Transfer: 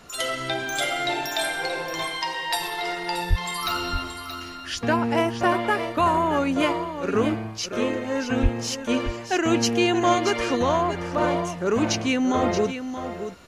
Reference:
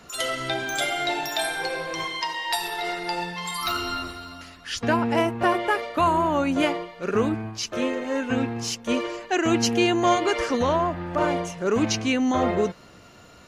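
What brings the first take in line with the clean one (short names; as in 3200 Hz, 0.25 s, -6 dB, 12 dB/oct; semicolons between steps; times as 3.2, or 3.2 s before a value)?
3.29–3.41 HPF 140 Hz 24 dB/oct; 8.42–8.54 HPF 140 Hz 24 dB/oct; expander -26 dBFS, range -21 dB; inverse comb 0.627 s -9.5 dB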